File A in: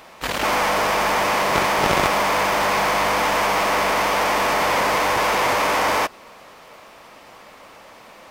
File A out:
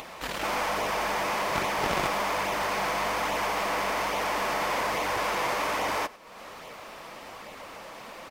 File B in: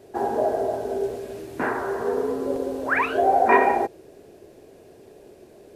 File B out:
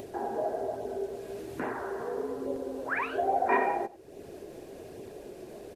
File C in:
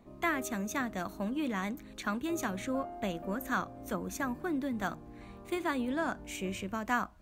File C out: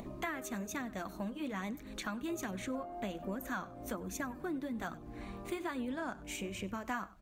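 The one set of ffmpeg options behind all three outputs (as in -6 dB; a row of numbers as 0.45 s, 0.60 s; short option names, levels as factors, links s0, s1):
-af "aecho=1:1:97:0.0891,acompressor=mode=upward:threshold=0.0708:ratio=2.5,flanger=delay=0.3:depth=5.9:regen=-46:speed=1.2:shape=sinusoidal,volume=0.562"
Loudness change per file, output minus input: -9.0 LU, -9.0 LU, -5.0 LU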